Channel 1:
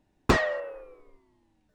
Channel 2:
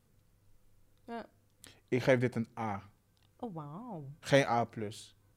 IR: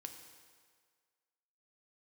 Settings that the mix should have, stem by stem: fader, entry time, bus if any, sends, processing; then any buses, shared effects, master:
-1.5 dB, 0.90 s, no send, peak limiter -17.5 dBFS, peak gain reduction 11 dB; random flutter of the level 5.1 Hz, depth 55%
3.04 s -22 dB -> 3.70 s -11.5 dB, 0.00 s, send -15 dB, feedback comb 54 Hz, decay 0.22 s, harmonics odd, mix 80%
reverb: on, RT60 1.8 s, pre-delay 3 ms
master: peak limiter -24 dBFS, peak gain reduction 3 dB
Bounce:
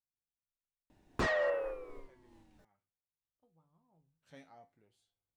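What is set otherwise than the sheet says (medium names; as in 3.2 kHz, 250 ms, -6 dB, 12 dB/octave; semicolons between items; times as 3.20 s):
stem 1 -1.5 dB -> +7.5 dB; stem 2 -22.0 dB -> -33.5 dB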